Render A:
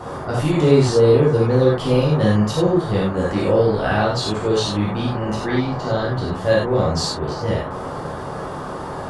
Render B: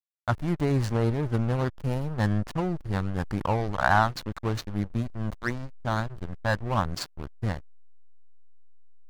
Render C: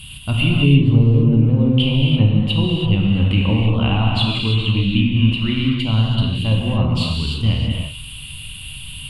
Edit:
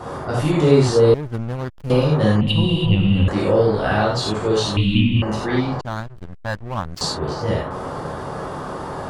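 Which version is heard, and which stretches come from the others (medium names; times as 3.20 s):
A
1.14–1.90 s: from B
2.41–3.28 s: from C
4.77–5.22 s: from C
5.81–7.01 s: from B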